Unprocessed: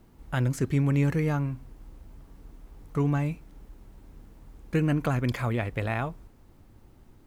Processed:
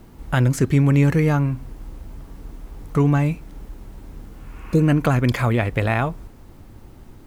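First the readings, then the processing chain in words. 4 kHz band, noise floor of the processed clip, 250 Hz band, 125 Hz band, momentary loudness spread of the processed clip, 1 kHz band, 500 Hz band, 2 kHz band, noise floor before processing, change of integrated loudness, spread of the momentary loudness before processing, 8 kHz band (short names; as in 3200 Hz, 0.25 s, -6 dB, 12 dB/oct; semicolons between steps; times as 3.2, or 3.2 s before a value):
+8.5 dB, -45 dBFS, +8.0 dB, +8.5 dB, 11 LU, +8.5 dB, +8.5 dB, +8.5 dB, -56 dBFS, +8.5 dB, 9 LU, n/a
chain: spectral repair 4.33–4.79, 650–3400 Hz both; in parallel at -3 dB: compressor, threshold -33 dBFS, peak gain reduction 12.5 dB; on the sum: gain +6.5 dB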